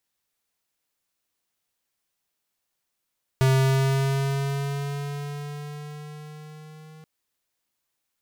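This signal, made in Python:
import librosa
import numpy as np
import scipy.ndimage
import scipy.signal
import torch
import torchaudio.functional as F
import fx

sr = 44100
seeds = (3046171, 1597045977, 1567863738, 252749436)

y = fx.riser_tone(sr, length_s=3.63, level_db=-18.0, wave='square', hz=132.0, rise_st=3.0, swell_db=-28.5)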